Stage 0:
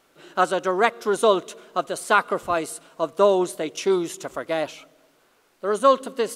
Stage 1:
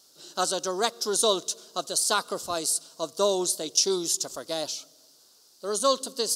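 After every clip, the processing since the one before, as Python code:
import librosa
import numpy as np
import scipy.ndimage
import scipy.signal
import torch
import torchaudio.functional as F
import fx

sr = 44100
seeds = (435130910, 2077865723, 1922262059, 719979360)

y = scipy.signal.sosfilt(scipy.signal.butter(2, 43.0, 'highpass', fs=sr, output='sos'), x)
y = fx.high_shelf_res(y, sr, hz=3300.0, db=14.0, q=3.0)
y = y * 10.0 ** (-6.5 / 20.0)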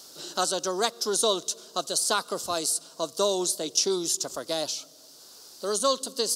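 y = fx.band_squash(x, sr, depth_pct=40)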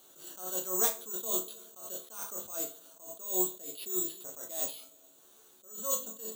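y = (np.kron(scipy.signal.resample_poly(x, 1, 6), np.eye(6)[0]) * 6)[:len(x)]
y = fx.resonator_bank(y, sr, root=38, chord='major', decay_s=0.29)
y = fx.attack_slew(y, sr, db_per_s=110.0)
y = y * 10.0 ** (3.0 / 20.0)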